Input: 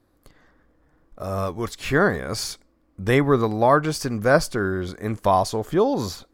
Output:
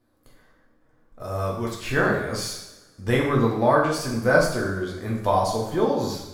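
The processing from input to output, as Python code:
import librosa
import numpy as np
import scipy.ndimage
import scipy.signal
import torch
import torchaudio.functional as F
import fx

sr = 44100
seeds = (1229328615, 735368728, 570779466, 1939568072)

y = fx.rev_double_slope(x, sr, seeds[0], early_s=0.74, late_s=1.9, knee_db=-18, drr_db=-3.0)
y = y * 10.0 ** (-6.0 / 20.0)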